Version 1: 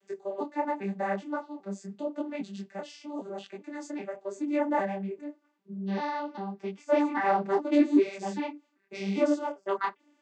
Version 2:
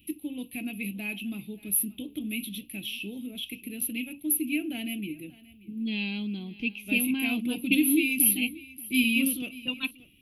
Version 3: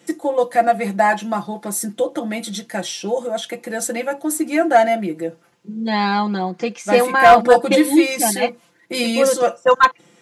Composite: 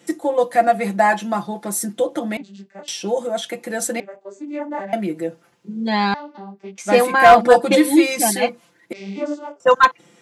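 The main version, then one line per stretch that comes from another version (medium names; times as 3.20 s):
3
2.37–2.88 s: from 1
4.00–4.93 s: from 1
6.14–6.78 s: from 1
8.93–9.60 s: from 1
not used: 2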